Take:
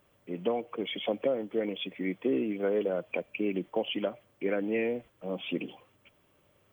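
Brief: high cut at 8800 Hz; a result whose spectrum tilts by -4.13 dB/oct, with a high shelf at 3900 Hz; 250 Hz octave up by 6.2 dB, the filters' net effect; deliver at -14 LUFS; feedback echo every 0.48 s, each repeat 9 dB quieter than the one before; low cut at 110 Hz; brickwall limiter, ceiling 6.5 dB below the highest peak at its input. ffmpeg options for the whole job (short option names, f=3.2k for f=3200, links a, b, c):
-af "highpass=110,lowpass=8.8k,equalizer=f=250:t=o:g=8,highshelf=f=3.9k:g=7.5,alimiter=limit=-19.5dB:level=0:latency=1,aecho=1:1:480|960|1440|1920:0.355|0.124|0.0435|0.0152,volume=16.5dB"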